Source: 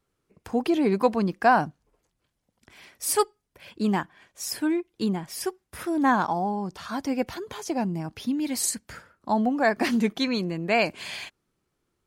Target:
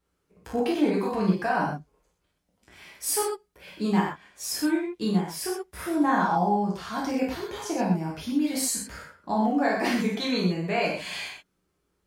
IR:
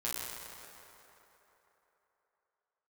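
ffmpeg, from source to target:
-filter_complex "[0:a]alimiter=limit=-16.5dB:level=0:latency=1:release=80[link_01];[1:a]atrim=start_sample=2205,atrim=end_sample=6174[link_02];[link_01][link_02]afir=irnorm=-1:irlink=0"

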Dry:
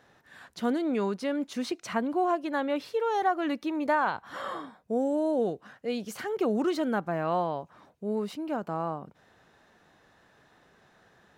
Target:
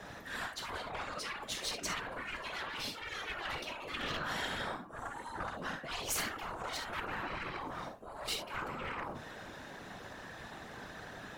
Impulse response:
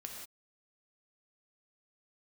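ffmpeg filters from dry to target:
-filter_complex "[0:a]areverse,acompressor=threshold=-37dB:ratio=6,areverse,bandreject=frequency=85.61:width_type=h:width=4,bandreject=frequency=171.22:width_type=h:width=4,bandreject=frequency=256.83:width_type=h:width=4,bandreject=frequency=342.44:width_type=h:width=4,bandreject=frequency=428.05:width_type=h:width=4,bandreject=frequency=513.66:width_type=h:width=4,bandreject=frequency=599.27:width_type=h:width=4,bandreject=frequency=684.88:width_type=h:width=4,bandreject=frequency=770.49:width_type=h:width=4,bandreject=frequency=856.1:width_type=h:width=4,bandreject=frequency=941.71:width_type=h:width=4,bandreject=frequency=1027.32:width_type=h:width=4,bandreject=frequency=1112.93:width_type=h:width=4,bandreject=frequency=1198.54:width_type=h:width=4,bandreject=frequency=1284.15:width_type=h:width=4,bandreject=frequency=1369.76:width_type=h:width=4,bandreject=frequency=1455.37:width_type=h:width=4,bandreject=frequency=1540.98:width_type=h:width=4,bandreject=frequency=1626.59:width_type=h:width=4,bandreject=frequency=1712.2:width_type=h:width=4,bandreject=frequency=1797.81:width_type=h:width=4,bandreject=frequency=1883.42:width_type=h:width=4,bandreject=frequency=1969.03:width_type=h:width=4,bandreject=frequency=2054.64:width_type=h:width=4,bandreject=frequency=2140.25:width_type=h:width=4,bandreject=frequency=2225.86:width_type=h:width=4,bandreject=frequency=2311.47:width_type=h:width=4,bandreject=frequency=2397.08:width_type=h:width=4,bandreject=frequency=2482.69:width_type=h:width=4,bandreject=frequency=2568.3:width_type=h:width=4,bandreject=frequency=2653.91:width_type=h:width=4,bandreject=frequency=2739.52:width_type=h:width=4,bandreject=frequency=2825.13:width_type=h:width=4,bandreject=frequency=2910.74:width_type=h:width=4[link_01];[1:a]atrim=start_sample=2205,afade=type=out:start_time=0.14:duration=0.01,atrim=end_sample=6615,asetrate=52920,aresample=44100[link_02];[link_01][link_02]afir=irnorm=-1:irlink=0,aeval=exprs='0.0237*sin(PI/2*2.24*val(0)/0.0237)':channel_layout=same,afftfilt=real='re*lt(hypot(re,im),0.0282)':imag='im*lt(hypot(re,im),0.0282)':win_size=1024:overlap=0.75,aeval=exprs='0.0299*(cos(1*acos(clip(val(0)/0.0299,-1,1)))-cos(1*PI/2))+0.000266*(cos(2*acos(clip(val(0)/0.0299,-1,1)))-cos(2*PI/2))+0.00376*(cos(3*acos(clip(val(0)/0.0299,-1,1)))-cos(3*PI/2))+0.00133*(cos(5*acos(clip(val(0)/0.0299,-1,1)))-cos(5*PI/2))+0.00106*(cos(8*acos(clip(val(0)/0.0299,-1,1)))-cos(8*PI/2))':channel_layout=same,afftfilt=real='hypot(re,im)*cos(2*PI*random(0))':imag='hypot(re,im)*sin(2*PI*random(1))':win_size=512:overlap=0.75,volume=16dB"

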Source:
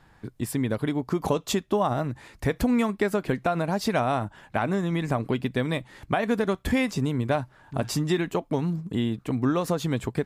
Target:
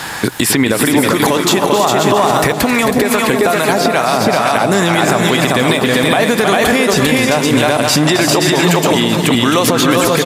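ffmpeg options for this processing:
ffmpeg -i in.wav -filter_complex "[0:a]equalizer=frequency=12000:width_type=o:width=2.7:gain=12.5,aecho=1:1:318|394|513:0.266|0.596|0.299,acrossover=split=1100|3600[link_01][link_02][link_03];[link_01]acompressor=threshold=-33dB:ratio=4[link_04];[link_02]acompressor=threshold=-45dB:ratio=4[link_05];[link_03]acompressor=threshold=-51dB:ratio=4[link_06];[link_04][link_05][link_06]amix=inputs=3:normalize=0,highpass=frequency=430:poles=1,acompressor=threshold=-40dB:ratio=6,aecho=1:1:266|532|798|1064|1330|1596|1862:0.282|0.166|0.0981|0.0579|0.0342|0.0201|0.0119,asettb=1/sr,asplit=3[link_07][link_08][link_09];[link_07]atrim=end=2.524[link_10];[link_08]atrim=start=2.52:end=4.72,asetpts=PTS-STARTPTS,afade=type=in:duration=0.004:curve=qsin,afade=type=out:start_time=2.196:duration=0.004:curve=qsin,acrossover=split=840[link_11][link_12];[link_11]aeval=exprs='val(0)*(1-0.5/2+0.5/2*cos(2*PI*2.3*n/s))':channel_layout=same[link_13];[link_12]aeval=exprs='val(0)*(1-0.5/2-0.5/2*cos(2*PI*2.3*n/s))':channel_layout=same[link_14];[link_13][link_14]amix=inputs=2:normalize=0[link_15];[link_09]atrim=start=4.716[link_16];[link_10][link_15]acrossfade=duration=0.004:curve1=hsin:curve2=qsin[link_17];[link_17][link_16]acrossfade=duration=0.004:curve1=qsin:curve2=hsin,alimiter=level_in=35dB:limit=-1dB:release=50:level=0:latency=1,volume=-1dB" out.wav

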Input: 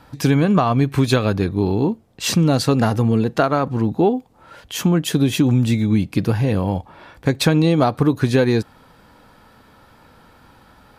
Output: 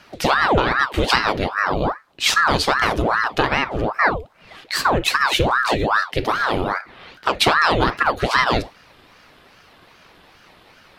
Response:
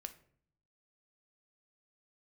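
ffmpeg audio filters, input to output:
-filter_complex "[0:a]asplit=2[link_01][link_02];[link_02]equalizer=frequency=3000:width=1:gain=14[link_03];[1:a]atrim=start_sample=2205,atrim=end_sample=4410[link_04];[link_03][link_04]afir=irnorm=-1:irlink=0,volume=7.5dB[link_05];[link_01][link_05]amix=inputs=2:normalize=0,aeval=exprs='val(0)*sin(2*PI*860*n/s+860*0.8/2.5*sin(2*PI*2.5*n/s))':channel_layout=same,volume=-7dB"

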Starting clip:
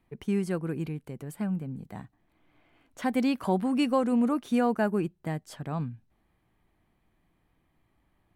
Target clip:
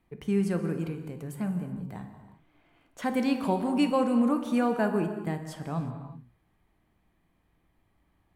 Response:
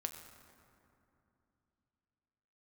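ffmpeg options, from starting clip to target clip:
-filter_complex "[1:a]atrim=start_sample=2205,afade=type=out:start_time=0.33:duration=0.01,atrim=end_sample=14994,asetrate=32634,aresample=44100[link_01];[0:a][link_01]afir=irnorm=-1:irlink=0"

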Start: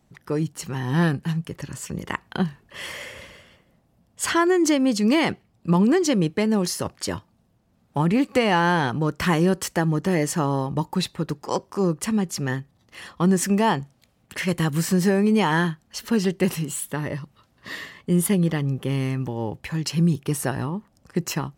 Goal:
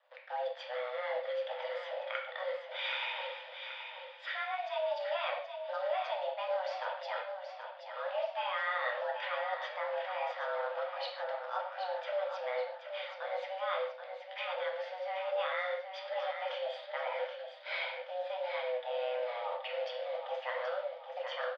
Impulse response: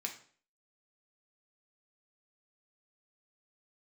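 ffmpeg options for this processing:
-filter_complex "[0:a]areverse,acompressor=threshold=-32dB:ratio=12,areverse,acrusher=bits=9:dc=4:mix=0:aa=0.000001,aecho=1:1:777|1554|2331|3108|3885:0.398|0.183|0.0842|0.0388|0.0178[link_01];[1:a]atrim=start_sample=2205,afade=type=out:start_time=0.15:duration=0.01,atrim=end_sample=7056,asetrate=27783,aresample=44100[link_02];[link_01][link_02]afir=irnorm=-1:irlink=0,highpass=frequency=160:width_type=q:width=0.5412,highpass=frequency=160:width_type=q:width=1.307,lowpass=frequency=3500:width_type=q:width=0.5176,lowpass=frequency=3500:width_type=q:width=0.7071,lowpass=frequency=3500:width_type=q:width=1.932,afreqshift=370,volume=-1.5dB"

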